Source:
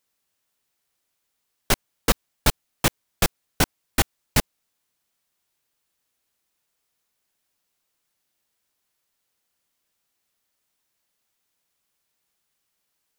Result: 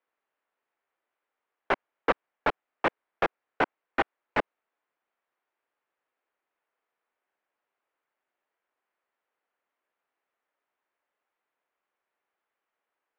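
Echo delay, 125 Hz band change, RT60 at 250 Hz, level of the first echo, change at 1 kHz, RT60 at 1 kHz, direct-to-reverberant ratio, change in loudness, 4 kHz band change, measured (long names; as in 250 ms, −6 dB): no echo audible, −18.5 dB, no reverb audible, no echo audible, +1.0 dB, no reverb audible, no reverb audible, −5.5 dB, −15.0 dB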